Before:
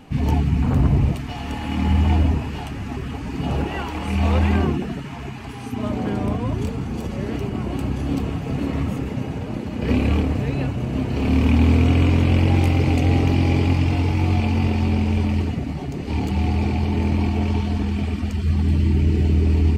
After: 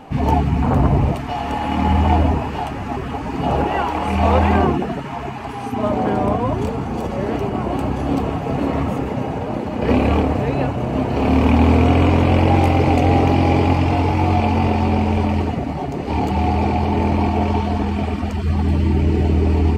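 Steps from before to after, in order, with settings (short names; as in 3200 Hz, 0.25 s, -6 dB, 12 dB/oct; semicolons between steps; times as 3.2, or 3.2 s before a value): bell 760 Hz +12 dB 2 oct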